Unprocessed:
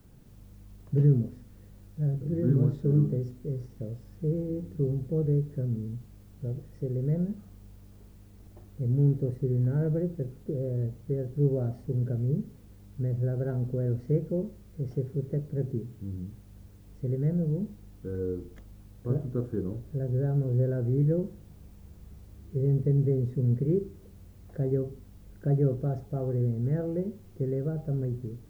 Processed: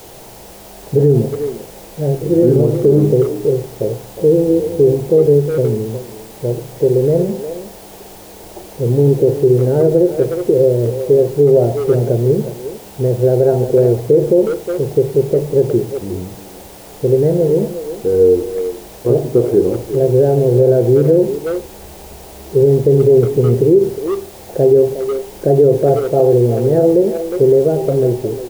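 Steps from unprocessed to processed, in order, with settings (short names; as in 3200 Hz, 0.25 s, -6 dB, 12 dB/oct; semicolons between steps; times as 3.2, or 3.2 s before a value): added noise white -51 dBFS; band shelf 550 Hz +14 dB; notches 50/100/150 Hz; speakerphone echo 0.36 s, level -10 dB; on a send at -14 dB: reverb RT60 0.45 s, pre-delay 8 ms; on the sum: maximiser +11.5 dB; gain -1.5 dB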